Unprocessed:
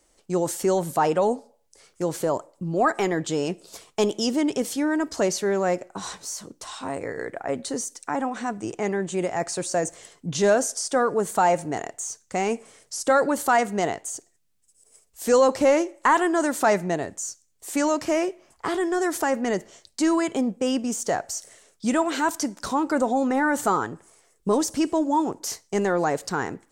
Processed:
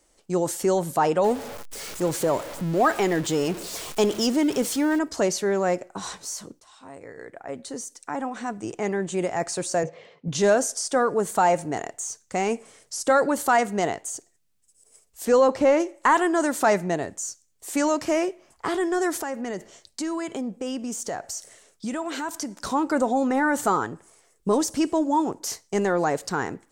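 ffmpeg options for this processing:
-filter_complex "[0:a]asettb=1/sr,asplit=3[s0][s1][s2];[s0]atrim=end=1.244[s3];[s1]atrim=start=1.24:end=4.99,asetpts=PTS-STARTPTS,afade=t=in:d=0.004:c=qsin,afade=t=out:st=3.746:d=0.004:c=qsin,aeval=exprs='val(0)+0.5*0.0282*sgn(val(0))':c=same[s4];[s2]atrim=start=4.986[s5];[s3][s4]acrossfade=d=0.004:c1=hsin:c2=qsin[s6];[s6][s5]acrossfade=d=0.004:c1=qsin:c2=hsin,asettb=1/sr,asplit=3[s7][s8][s9];[s7]atrim=end=9.834[s10];[s8]atrim=start=9.83:end=10.28,asetpts=PTS-STARTPTS,afade=t=in:d=0.004:c=qsin,afade=t=out:st=0.446:d=0.004:c=qsin,highpass=130,equalizer=f=150:t=q:w=4:g=8,equalizer=f=320:t=q:w=4:g=-6,equalizer=f=510:t=q:w=4:g=10,equalizer=f=1500:t=q:w=4:g=-6,equalizer=f=2300:t=q:w=4:g=4,equalizer=f=3300:t=q:w=4:g=-3,lowpass=f=3700:w=0.5412,lowpass=f=3700:w=1.3066[s11];[s9]atrim=start=10.276[s12];[s10][s11]acrossfade=d=0.004:c1=hsin:c2=qsin[s13];[s13][s12]acrossfade=d=0.004:c1=qsin:c2=hsin,asettb=1/sr,asplit=3[s14][s15][s16];[s14]atrim=end=15.254[s17];[s15]atrim=start=15.25:end=15.8,asetpts=PTS-STARTPTS,afade=t=in:d=0.004:c=qsin,afade=t=out:st=0.546:d=0.004:c=qsin,lowpass=f=3100:p=1[s18];[s16]atrim=start=15.796[s19];[s17][s18]acrossfade=d=0.004:c1=hsin:c2=qsin[s20];[s20][s19]acrossfade=d=0.004:c1=qsin:c2=hsin,asettb=1/sr,asplit=3[s21][s22][s23];[s21]atrim=end=19.184[s24];[s22]atrim=start=19.18:end=22.65,asetpts=PTS-STARTPTS,afade=t=in:d=0.004:c=qsin,afade=t=out:st=3.466:d=0.004:c=qsin,acompressor=threshold=0.0355:ratio=2.5:attack=3.2:release=140:knee=1:detection=peak[s25];[s23]atrim=start=22.646[s26];[s24][s25]acrossfade=d=0.004:c1=hsin:c2=qsin[s27];[s27][s26]acrossfade=d=0.004:c1=qsin:c2=hsin,asplit=2[s28][s29];[s28]atrim=end=6.6,asetpts=PTS-STARTPTS,afade=t=out:st=6.596:d=0.004:c=hsin:silence=0.133352[s30];[s29]atrim=start=6.6,asetpts=PTS-STARTPTS,afade=t=in:d=2.47:silence=0.133352[s31];[s30][s31]concat=n=2:v=0:a=1"

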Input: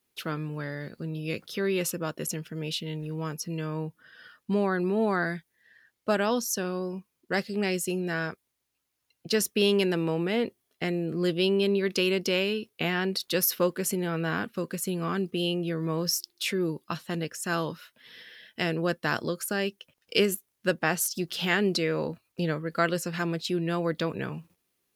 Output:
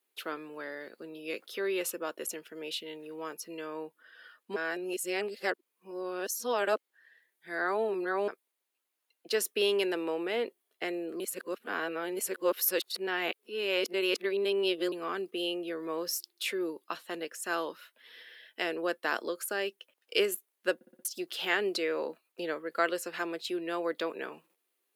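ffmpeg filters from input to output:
-filter_complex "[0:a]asplit=10[s0][s1][s2][s3][s4][s5][s6][s7][s8][s9];[s0]atrim=end=4.562[s10];[s1]atrim=start=4.558:end=8.282,asetpts=PTS-STARTPTS,areverse[s11];[s2]atrim=start=8.278:end=11.202[s12];[s3]atrim=start=11.198:end=14.922,asetpts=PTS-STARTPTS,areverse[s13];[s4]atrim=start=14.918:end=20.812[s14];[s5]atrim=start=20.748:end=20.812[s15];[s6]atrim=start=20.748:end=20.812[s16];[s7]atrim=start=20.748:end=20.812[s17];[s8]atrim=start=20.748:end=20.812[s18];[s9]atrim=start=21.048[s19];[s10][s11]acrossfade=d=0.004:c1=hsin:c2=hsin[s20];[s20][s12]acrossfade=d=0.004:c1=hsin:c2=hsin[s21];[s21][s13]acrossfade=d=0.004:c1=hsin:c2=hsin[s22];[s22][s14]acrossfade=d=0.004:c1=hsin:c2=hsin[s23];[s23][s15]acrossfade=d=0.004:c1=hsin:c2=hsin[s24];[s24][s16]acrossfade=d=0.004:c1=hsin:c2=hsin[s25];[s25][s17]acrossfade=d=0.004:c1=hsin:c2=hsin[s26];[s26][s18]acrossfade=d=0.004:c1=hsin:c2=hsin[s27];[s27][s19]acrossfade=d=0.004:c1=hsin:c2=hsin,highpass=f=330:w=0.5412,highpass=f=330:w=1.3066,equalizer=f=5600:t=o:w=0.65:g=-5.5,volume=0.75"

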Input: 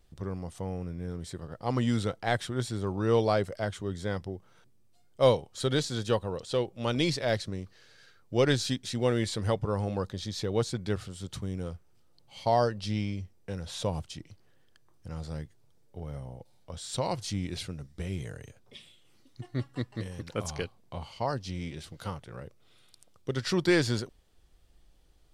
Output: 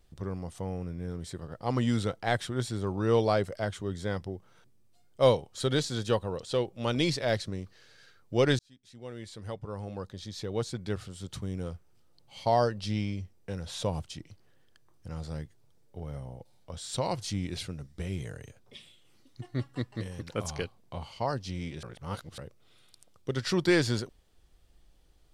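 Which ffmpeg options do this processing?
-filter_complex "[0:a]asplit=4[s0][s1][s2][s3];[s0]atrim=end=8.59,asetpts=PTS-STARTPTS,afade=t=out:st=8.586:d=0.004:c=hsin[s4];[s1]atrim=start=8.59:end=21.832,asetpts=PTS-STARTPTS,afade=t=in:d=3.05[s5];[s2]atrim=start=21.828:end=22.382,asetpts=PTS-STARTPTS,areverse[s6];[s3]atrim=start=22.378[s7];[s4][s5]concat=n=2:v=0:a=1[s8];[s8][s6]acrossfade=d=0.004:c1=hsin:c2=hsin[s9];[s9][s7]acrossfade=d=0.004:c1=hsin:c2=hsin"

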